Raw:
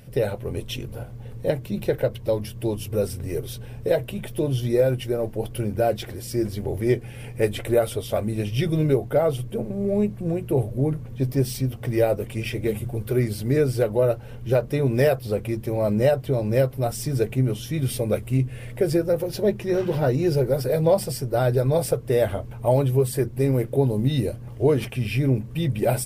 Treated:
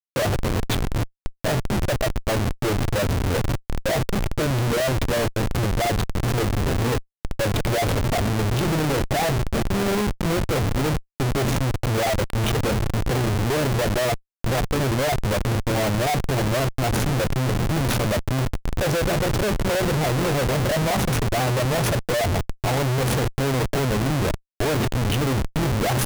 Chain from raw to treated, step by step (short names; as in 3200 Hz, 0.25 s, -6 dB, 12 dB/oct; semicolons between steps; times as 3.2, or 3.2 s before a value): formant shift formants +3 st; Schmitt trigger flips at -28.5 dBFS; gain +2.5 dB